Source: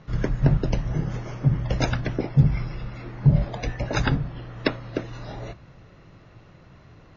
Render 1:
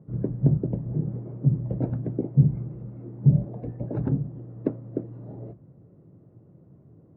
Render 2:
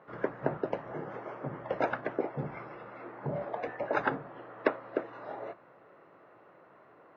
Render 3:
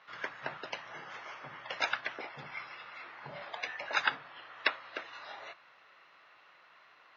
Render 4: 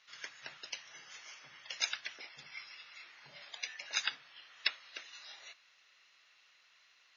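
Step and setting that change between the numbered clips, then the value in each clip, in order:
flat-topped band-pass, frequency: 220, 790, 2,000, 5,500 Hertz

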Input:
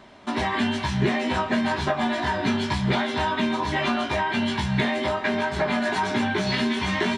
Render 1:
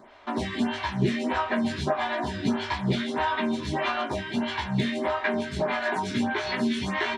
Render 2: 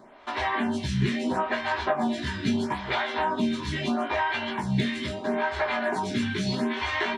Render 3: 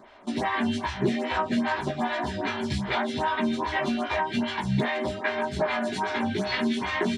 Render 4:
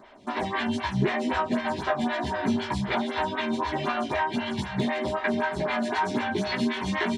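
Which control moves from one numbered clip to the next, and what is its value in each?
phaser with staggered stages, speed: 1.6, 0.76, 2.5, 3.9 Hertz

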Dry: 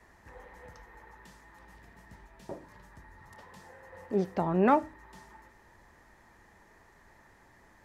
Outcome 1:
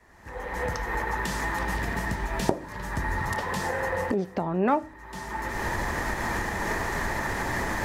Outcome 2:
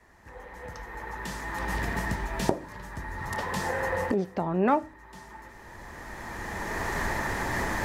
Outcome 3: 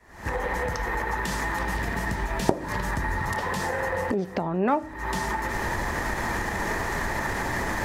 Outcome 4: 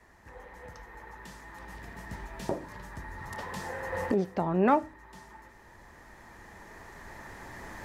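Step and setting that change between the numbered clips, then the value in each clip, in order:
camcorder AGC, rising by: 36, 14, 89, 5.5 dB per second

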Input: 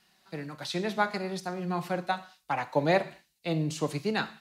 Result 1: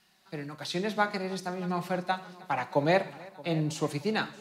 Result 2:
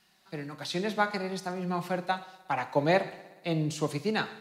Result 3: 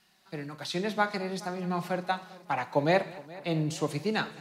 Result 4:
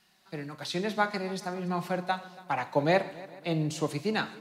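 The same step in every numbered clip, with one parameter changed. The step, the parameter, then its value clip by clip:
echo machine with several playback heads, delay time: 313, 60, 210, 140 milliseconds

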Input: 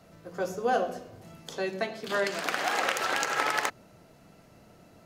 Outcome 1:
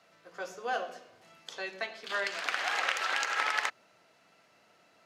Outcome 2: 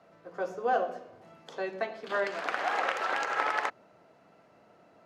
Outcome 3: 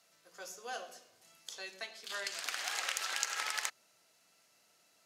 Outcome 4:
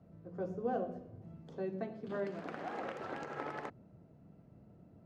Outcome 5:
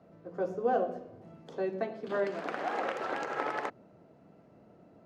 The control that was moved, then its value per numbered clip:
resonant band-pass, frequency: 2,500, 920, 7,500, 120, 350 Hertz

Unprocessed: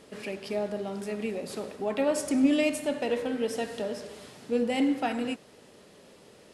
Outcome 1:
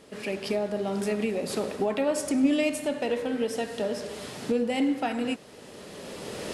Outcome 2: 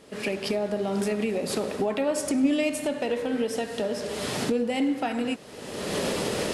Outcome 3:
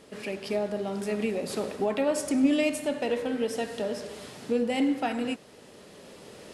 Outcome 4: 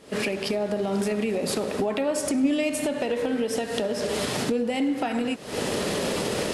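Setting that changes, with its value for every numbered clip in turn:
camcorder AGC, rising by: 14, 36, 5.7, 90 dB per second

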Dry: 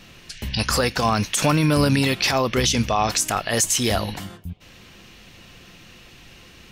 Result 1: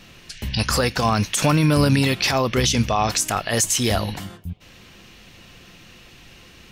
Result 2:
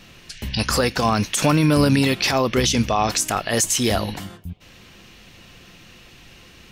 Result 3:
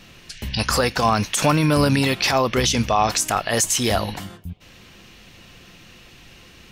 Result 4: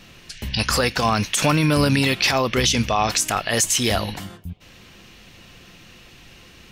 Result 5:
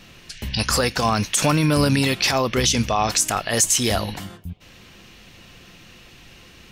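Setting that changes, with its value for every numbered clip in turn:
dynamic equaliser, frequency: 110, 300, 870, 2,600, 7,900 Hertz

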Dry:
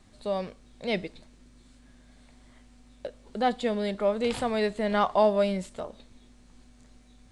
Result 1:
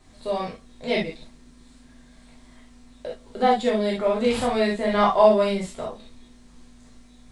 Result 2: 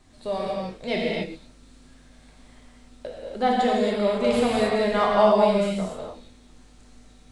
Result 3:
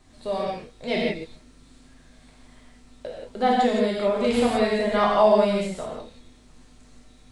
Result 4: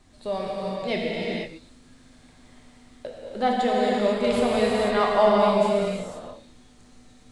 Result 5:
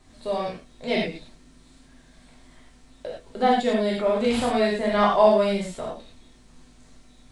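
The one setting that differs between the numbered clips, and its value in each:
reverb whose tail is shaped and stops, gate: 90, 310, 200, 530, 130 milliseconds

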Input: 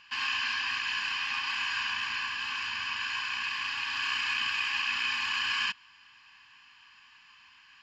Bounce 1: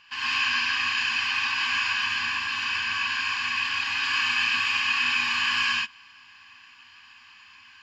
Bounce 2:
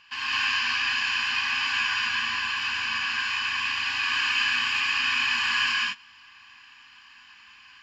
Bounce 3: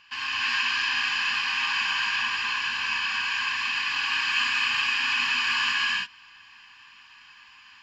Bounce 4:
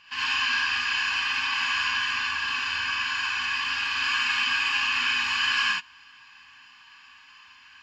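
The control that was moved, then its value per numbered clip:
reverb whose tail is shaped and stops, gate: 160, 240, 360, 100 milliseconds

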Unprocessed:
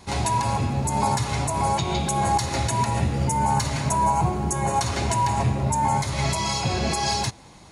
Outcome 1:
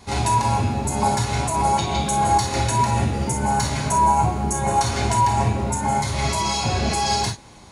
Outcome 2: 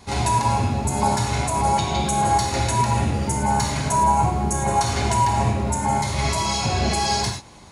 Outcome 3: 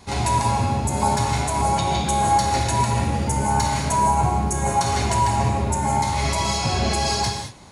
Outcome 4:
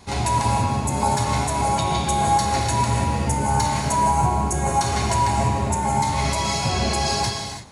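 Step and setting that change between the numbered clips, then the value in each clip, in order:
reverb whose tail is shaped and stops, gate: 80, 130, 240, 360 milliseconds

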